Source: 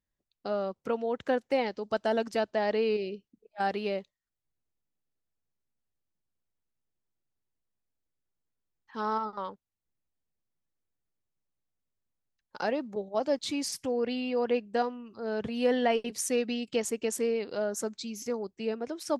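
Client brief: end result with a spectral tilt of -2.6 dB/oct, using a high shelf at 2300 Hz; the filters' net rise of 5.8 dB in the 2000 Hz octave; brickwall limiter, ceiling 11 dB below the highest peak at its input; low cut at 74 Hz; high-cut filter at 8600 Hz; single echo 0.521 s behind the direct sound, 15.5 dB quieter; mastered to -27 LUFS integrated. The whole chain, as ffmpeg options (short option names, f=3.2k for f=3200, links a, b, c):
-af "highpass=74,lowpass=8.6k,equalizer=f=2k:t=o:g=4.5,highshelf=f=2.3k:g=5.5,alimiter=limit=-22dB:level=0:latency=1,aecho=1:1:521:0.168,volume=6dB"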